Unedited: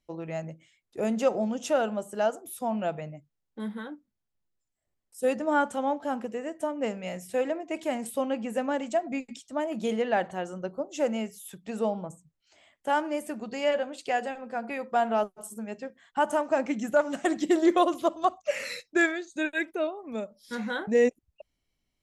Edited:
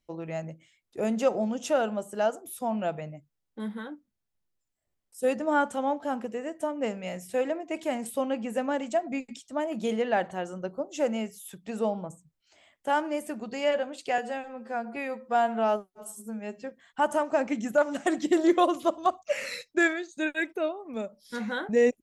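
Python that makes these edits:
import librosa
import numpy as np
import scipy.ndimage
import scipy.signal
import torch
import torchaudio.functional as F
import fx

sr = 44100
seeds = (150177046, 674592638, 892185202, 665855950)

y = fx.edit(x, sr, fx.stretch_span(start_s=14.18, length_s=1.63, factor=1.5), tone=tone)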